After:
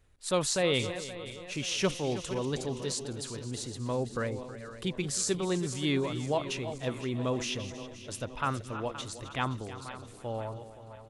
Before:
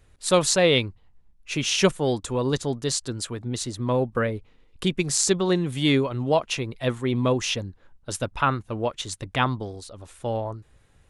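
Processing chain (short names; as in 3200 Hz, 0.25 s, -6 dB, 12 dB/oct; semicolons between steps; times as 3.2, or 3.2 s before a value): regenerating reverse delay 0.261 s, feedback 65%, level -12.5 dB; echo 0.32 s -16 dB; transient shaper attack -1 dB, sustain +3 dB; gain -8.5 dB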